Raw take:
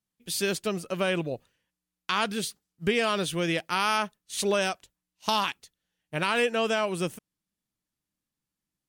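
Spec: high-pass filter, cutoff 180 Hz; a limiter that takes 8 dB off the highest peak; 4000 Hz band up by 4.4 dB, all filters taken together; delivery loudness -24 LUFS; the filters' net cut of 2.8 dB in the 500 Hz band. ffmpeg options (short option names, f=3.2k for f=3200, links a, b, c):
-af "highpass=180,equalizer=f=500:t=o:g=-3.5,equalizer=f=4k:t=o:g=6,volume=4.5dB,alimiter=limit=-10dB:level=0:latency=1"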